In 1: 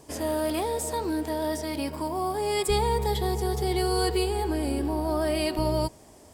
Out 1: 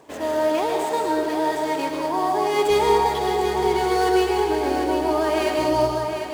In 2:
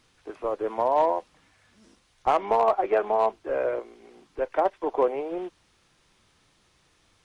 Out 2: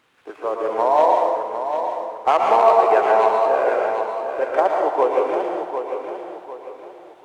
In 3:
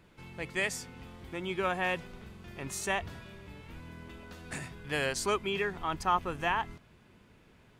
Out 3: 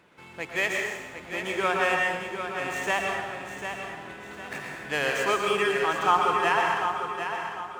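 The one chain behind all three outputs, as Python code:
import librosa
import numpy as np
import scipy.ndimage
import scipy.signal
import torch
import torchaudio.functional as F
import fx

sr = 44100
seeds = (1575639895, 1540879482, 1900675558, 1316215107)

y = scipy.signal.medfilt(x, 9)
y = fx.highpass(y, sr, hz=560.0, slope=6)
y = fx.high_shelf(y, sr, hz=9400.0, db=-6.0)
y = fx.echo_feedback(y, sr, ms=749, feedback_pct=36, wet_db=-8)
y = fx.rev_plate(y, sr, seeds[0], rt60_s=1.2, hf_ratio=0.8, predelay_ms=100, drr_db=0.5)
y = y * librosa.db_to_amplitude(7.0)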